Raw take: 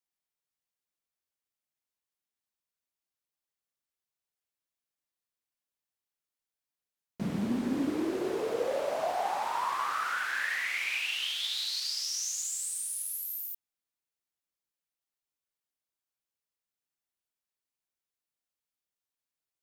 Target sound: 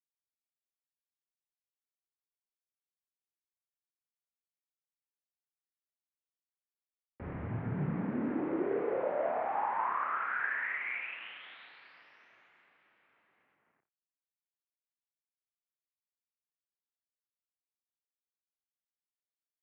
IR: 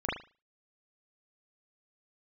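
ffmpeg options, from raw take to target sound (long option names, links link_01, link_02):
-filter_complex "[0:a]asplit=7[link_01][link_02][link_03][link_04][link_05][link_06][link_07];[link_02]adelay=85,afreqshift=53,volume=-15dB[link_08];[link_03]adelay=170,afreqshift=106,volume=-19.9dB[link_09];[link_04]adelay=255,afreqshift=159,volume=-24.8dB[link_10];[link_05]adelay=340,afreqshift=212,volume=-29.6dB[link_11];[link_06]adelay=425,afreqshift=265,volume=-34.5dB[link_12];[link_07]adelay=510,afreqshift=318,volume=-39.4dB[link_13];[link_01][link_08][link_09][link_10][link_11][link_12][link_13]amix=inputs=7:normalize=0,asplit=2[link_14][link_15];[1:a]atrim=start_sample=2205,asetrate=57330,aresample=44100[link_16];[link_15][link_16]afir=irnorm=-1:irlink=0,volume=-10dB[link_17];[link_14][link_17]amix=inputs=2:normalize=0,acrusher=bits=8:mix=0:aa=0.5,highpass=frequency=280:width_type=q:width=0.5412,highpass=frequency=280:width_type=q:width=1.307,lowpass=frequency=2300:width_type=q:width=0.5176,lowpass=frequency=2300:width_type=q:width=0.7071,lowpass=frequency=2300:width_type=q:width=1.932,afreqshift=-130,volume=-4dB"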